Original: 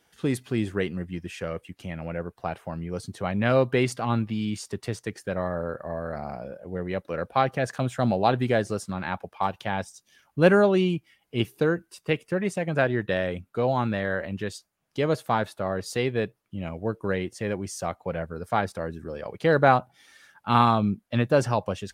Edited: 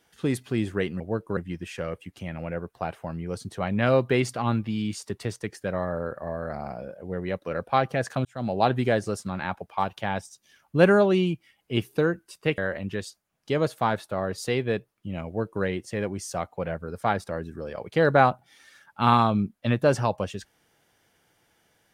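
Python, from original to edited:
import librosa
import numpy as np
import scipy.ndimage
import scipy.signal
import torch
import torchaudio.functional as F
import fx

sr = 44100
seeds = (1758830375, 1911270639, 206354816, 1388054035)

y = fx.edit(x, sr, fx.fade_in_span(start_s=7.88, length_s=0.39),
    fx.cut(start_s=12.21, length_s=1.85),
    fx.duplicate(start_s=16.74, length_s=0.37, to_s=1.0), tone=tone)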